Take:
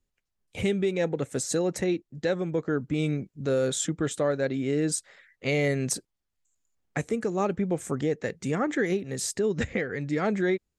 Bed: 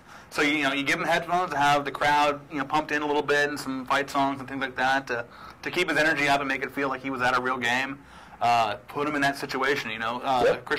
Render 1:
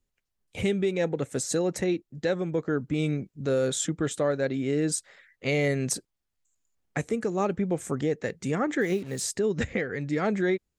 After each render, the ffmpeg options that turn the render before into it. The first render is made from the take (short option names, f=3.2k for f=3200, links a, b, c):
-filter_complex "[0:a]asettb=1/sr,asplit=3[a][b][c];[a]atrim=end=8.814[d];[b]atrim=start=8.81:end=9.24,asetpts=PTS-STARTPTS,afade=t=in:d=0.004:c=qsin,afade=t=out:st=0.426:d=0.004:c=qsin,acrusher=bits=7:mix=0:aa=0.5[e];[c]atrim=start=9.236[f];[d][e]acrossfade=d=0.004:c1=hsin:c2=qsin[g];[g][f]acrossfade=d=0.004:c1=qsin:c2=hsin"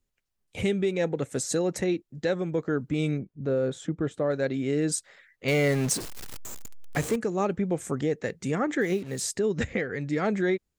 -filter_complex "[0:a]asplit=3[a][b][c];[a]afade=t=out:st=3.17:d=0.02[d];[b]lowpass=f=1k:p=1,afade=t=in:st=3.17:d=0.02,afade=t=out:st=4.29:d=0.02[e];[c]afade=t=in:st=4.29:d=0.02[f];[d][e][f]amix=inputs=3:normalize=0,asettb=1/sr,asplit=3[g][h][i];[g]atrim=end=5.484[j];[h]atrim=start=5.48:end=7.16,asetpts=PTS-STARTPTS,afade=t=in:d=0.004:c=qsin,afade=t=out:st=1.676:d=0.004:c=qsin,aeval=exprs='val(0)+0.5*0.0316*sgn(val(0))':c=same[k];[i]atrim=start=7.156[l];[j][k]acrossfade=d=0.004:c1=hsin:c2=qsin[m];[m][l]acrossfade=d=0.004:c1=qsin:c2=hsin"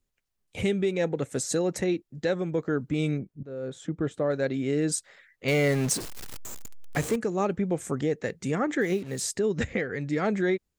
-filter_complex "[0:a]asplit=2[a][b];[a]atrim=end=3.43,asetpts=PTS-STARTPTS,afade=t=out:st=3.426:d=0.004:c=hsin:silence=0.105925[c];[b]atrim=start=3.43,asetpts=PTS-STARTPTS,afade=t=in:d=0.58:silence=0.105925[d];[c][d]concat=n=2:v=0:a=1"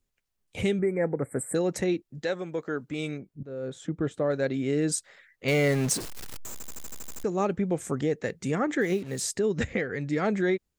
-filter_complex "[0:a]asettb=1/sr,asplit=3[a][b][c];[a]atrim=end=0.794[d];[b]atrim=start=0.79:end=1.55,asetpts=PTS-STARTPTS,afade=t=in:d=0.004:c=qsin,afade=t=out:st=0.756:d=0.004:c=qsin,asuperstop=centerf=4300:order=20:qfactor=0.77[e];[c]atrim=start=1.546[f];[d][e]acrossfade=d=0.004:c1=hsin:c2=qsin[g];[g][f]acrossfade=d=0.004:c1=qsin:c2=hsin,asettb=1/sr,asplit=3[h][i][j];[h]atrim=end=2.224[k];[i]atrim=start=2.22:end=3.28,asetpts=PTS-STARTPTS,afade=t=in:d=0.004:c=qsin,afade=t=out:st=1.056:d=0.004:c=qsin,lowshelf=f=290:g=-11.5[l];[j]atrim=start=3.276[m];[k][l]acrossfade=d=0.004:c1=hsin:c2=qsin[n];[n][m]acrossfade=d=0.004:c1=qsin:c2=hsin,asplit=10[o][p][q][r][s][t][u][v][w][x];[o]atrim=end=6.602[y];[p]atrim=start=6.518:end=6.602[z];[q]atrim=start=6.518:end=6.602[aa];[r]atrim=start=6.518:end=6.602[ab];[s]atrim=start=6.518:end=6.602[ac];[t]atrim=start=6.518:end=6.602[ad];[u]atrim=start=6.518:end=6.602[ae];[v]atrim=start=6.518:end=6.602[af];[w]atrim=start=6.518:end=6.602[ag];[x]atrim=start=7.238[ah];[y][z]acrossfade=d=0.004:c1=hsin:c2=hsin[ai];[ai][aa]acrossfade=d=0.004:c1=hsin:c2=hsin[aj];[aj][ab]acrossfade=d=0.004:c1=hsin:c2=hsin[ak];[ak][ac]acrossfade=d=0.004:c1=hsin:c2=hsin[al];[al][ad]acrossfade=d=0.004:c1=hsin:c2=hsin[am];[am][ae]acrossfade=d=0.004:c1=hsin:c2=hsin[an];[an][af]acrossfade=d=0.004:c1=hsin:c2=hsin[ao];[ao][ag]acrossfade=d=0.004:c1=hsin:c2=hsin[ap];[ap][ah]acrossfade=d=0.004:c1=hsin:c2=hsin"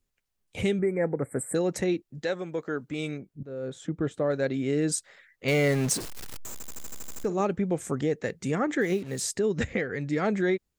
-filter_complex "[0:a]asettb=1/sr,asplit=3[a][b][c];[a]atrim=end=6.714[d];[b]atrim=start=6.71:end=7.41,asetpts=PTS-STARTPTS,afade=t=in:d=0.004:c=qsin,afade=t=out:st=0.696:d=0.004:c=qsin,asplit=2[e][f];[f]adelay=48,volume=-14dB[g];[e][g]amix=inputs=2:normalize=0,atrim=end_sample=30870[h];[c]atrim=start=7.406[i];[d][h]acrossfade=d=0.004:c1=hsin:c2=qsin[j];[j][i]acrossfade=d=0.004:c1=qsin:c2=hsin"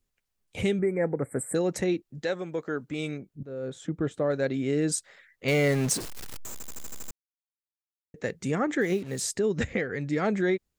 -filter_complex "[0:a]asplit=3[a][b][c];[a]atrim=end=7.11,asetpts=PTS-STARTPTS,afade=t=out:st=7.106:d=0.004:c=hsin[d];[b]atrim=start=7.11:end=8.14,asetpts=PTS-STARTPTS,volume=0[e];[c]atrim=start=8.14,asetpts=PTS-STARTPTS,afade=t=in:d=0.004:c=hsin[f];[d][e][f]concat=n=3:v=0:a=1"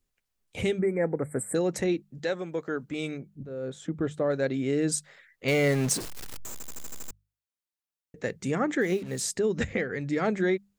-af "bandreject=f=50:t=h:w=6,bandreject=f=100:t=h:w=6,bandreject=f=150:t=h:w=6,bandreject=f=200:t=h:w=6"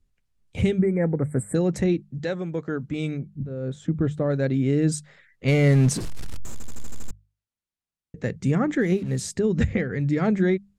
-af "lowpass=11k,bass=f=250:g=13,treble=f=4k:g=-2"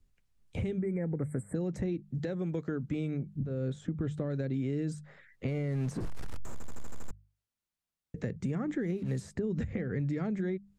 -filter_complex "[0:a]alimiter=limit=-20dB:level=0:latency=1:release=229,acrossover=split=410|1800[a][b][c];[a]acompressor=threshold=-31dB:ratio=4[d];[b]acompressor=threshold=-43dB:ratio=4[e];[c]acompressor=threshold=-56dB:ratio=4[f];[d][e][f]amix=inputs=3:normalize=0"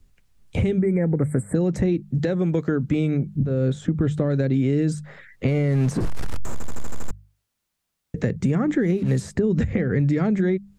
-af "volume=12dB"